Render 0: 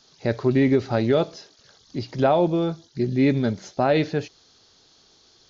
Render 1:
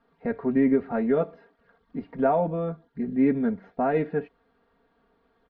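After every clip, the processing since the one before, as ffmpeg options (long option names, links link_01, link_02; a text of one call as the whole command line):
ffmpeg -i in.wav -af "lowpass=frequency=1900:width=0.5412,lowpass=frequency=1900:width=1.3066,aecho=1:1:4.3:1,volume=-6dB" out.wav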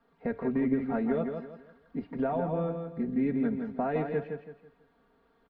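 ffmpeg -i in.wav -filter_complex "[0:a]acrossover=split=160|3000[link_01][link_02][link_03];[link_02]acompressor=threshold=-26dB:ratio=6[link_04];[link_01][link_04][link_03]amix=inputs=3:normalize=0,asplit=2[link_05][link_06];[link_06]aecho=0:1:165|330|495|660:0.501|0.165|0.0546|0.018[link_07];[link_05][link_07]amix=inputs=2:normalize=0,volume=-1.5dB" out.wav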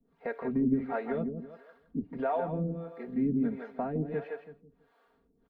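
ffmpeg -i in.wav -filter_complex "[0:a]acrossover=split=400[link_01][link_02];[link_01]aeval=exprs='val(0)*(1-1/2+1/2*cos(2*PI*1.5*n/s))':channel_layout=same[link_03];[link_02]aeval=exprs='val(0)*(1-1/2-1/2*cos(2*PI*1.5*n/s))':channel_layout=same[link_04];[link_03][link_04]amix=inputs=2:normalize=0,volume=3dB" out.wav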